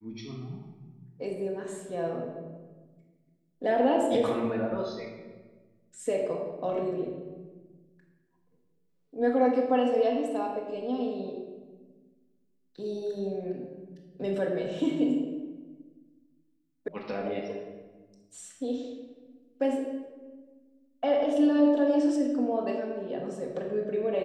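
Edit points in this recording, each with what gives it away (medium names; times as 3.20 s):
16.88 s: sound stops dead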